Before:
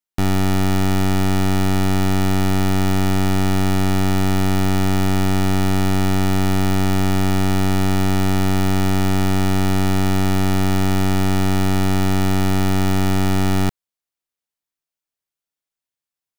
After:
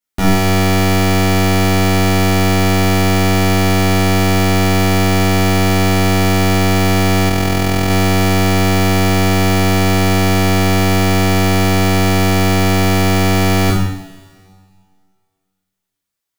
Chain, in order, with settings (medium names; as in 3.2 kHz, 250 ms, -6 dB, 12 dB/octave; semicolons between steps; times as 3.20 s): two-slope reverb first 0.77 s, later 2.1 s, from -17 dB, DRR -8.5 dB; 7.29–7.90 s: AM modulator 42 Hz, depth 35%